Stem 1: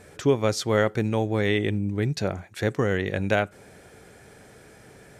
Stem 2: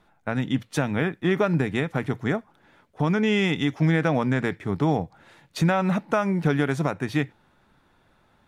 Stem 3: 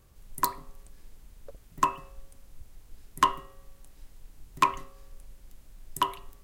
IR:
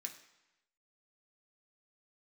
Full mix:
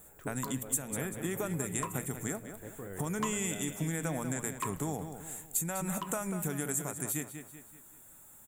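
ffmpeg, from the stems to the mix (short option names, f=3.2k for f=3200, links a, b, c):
-filter_complex "[0:a]lowpass=1.7k,volume=-14.5dB,asplit=2[a][b];[b]volume=-11.5dB[c];[1:a]aexciter=amount=15.1:drive=5.2:freq=7.8k,equalizer=f=7.5k:t=o:w=0.34:g=14,volume=-4dB,asplit=3[d][e][f];[e]volume=-18.5dB[g];[2:a]volume=-15dB[h];[f]apad=whole_len=233564[i];[a][i]sidechaincompress=threshold=-33dB:ratio=8:attack=16:release=1230[j];[j][d]amix=inputs=2:normalize=0,aexciter=amount=2.5:drive=3.2:freq=5.9k,acompressor=threshold=-35dB:ratio=3,volume=0dB[k];[c][g]amix=inputs=2:normalize=0,aecho=0:1:191|382|573|764|955|1146:1|0.43|0.185|0.0795|0.0342|0.0147[l];[h][k][l]amix=inputs=3:normalize=0"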